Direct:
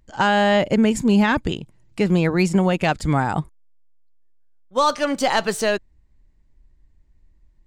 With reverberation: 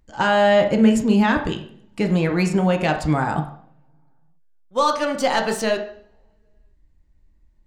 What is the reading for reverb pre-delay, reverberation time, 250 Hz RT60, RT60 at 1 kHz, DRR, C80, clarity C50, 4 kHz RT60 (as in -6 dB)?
3 ms, 0.60 s, 0.85 s, 0.55 s, 4.0 dB, 13.0 dB, 9.5 dB, 0.55 s